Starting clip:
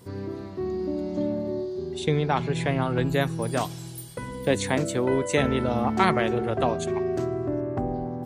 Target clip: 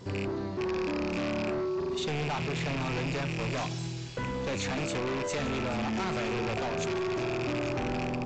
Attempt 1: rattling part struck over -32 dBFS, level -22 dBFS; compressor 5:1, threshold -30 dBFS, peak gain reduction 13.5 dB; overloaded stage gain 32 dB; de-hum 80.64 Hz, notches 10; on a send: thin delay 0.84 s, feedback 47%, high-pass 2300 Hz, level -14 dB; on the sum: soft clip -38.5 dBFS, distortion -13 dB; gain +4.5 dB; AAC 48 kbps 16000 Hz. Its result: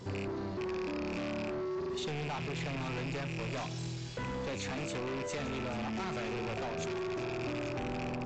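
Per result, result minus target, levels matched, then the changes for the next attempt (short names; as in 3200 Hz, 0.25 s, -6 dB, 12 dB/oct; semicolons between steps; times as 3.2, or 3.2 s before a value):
soft clip: distortion +11 dB; compressor: peak gain reduction +5 dB
change: soft clip -30 dBFS, distortion -24 dB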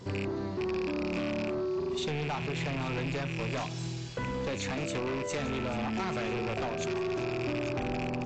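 compressor: peak gain reduction +5 dB
change: compressor 5:1, threshold -23.5 dBFS, peak gain reduction 8 dB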